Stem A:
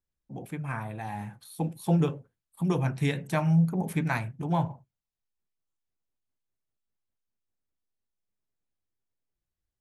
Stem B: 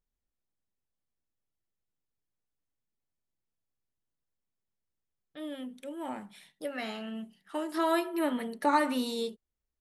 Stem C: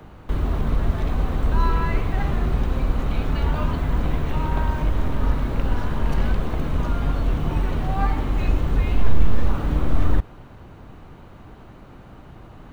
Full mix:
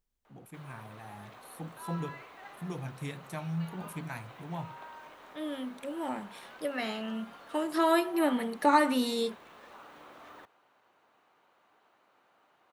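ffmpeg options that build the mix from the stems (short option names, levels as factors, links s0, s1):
-filter_complex "[0:a]highshelf=f=7200:g=10.5,volume=0.251[s0];[1:a]volume=1.33[s1];[2:a]highpass=680,adelay=250,volume=0.178[s2];[s0][s1][s2]amix=inputs=3:normalize=0"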